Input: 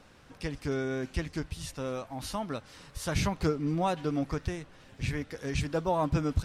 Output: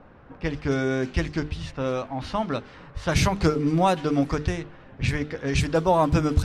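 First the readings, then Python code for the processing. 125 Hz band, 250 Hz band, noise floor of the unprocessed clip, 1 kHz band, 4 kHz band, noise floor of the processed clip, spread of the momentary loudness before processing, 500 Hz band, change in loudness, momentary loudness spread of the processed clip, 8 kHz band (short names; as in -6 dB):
+7.5 dB, +7.5 dB, -56 dBFS, +8.5 dB, +7.0 dB, -49 dBFS, 10 LU, +8.0 dB, +7.5 dB, 11 LU, +5.5 dB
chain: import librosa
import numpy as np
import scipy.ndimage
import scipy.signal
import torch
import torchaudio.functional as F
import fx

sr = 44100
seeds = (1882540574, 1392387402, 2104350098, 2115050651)

y = fx.hum_notches(x, sr, base_hz=50, count=9)
y = fx.env_lowpass(y, sr, base_hz=1200.0, full_db=-26.0)
y = F.gain(torch.from_numpy(y), 8.5).numpy()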